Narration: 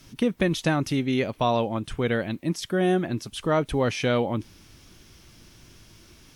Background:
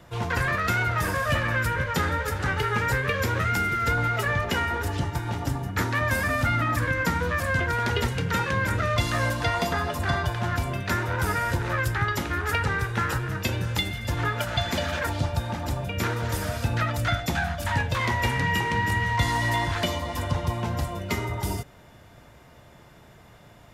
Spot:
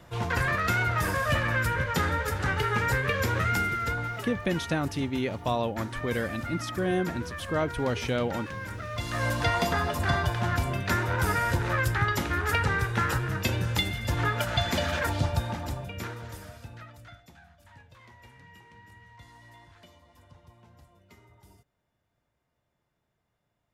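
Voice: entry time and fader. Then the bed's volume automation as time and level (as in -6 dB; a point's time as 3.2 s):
4.05 s, -5.0 dB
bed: 3.58 s -1.5 dB
4.37 s -12 dB
8.88 s -12 dB
9.35 s -0.5 dB
15.38 s -0.5 dB
17.38 s -28 dB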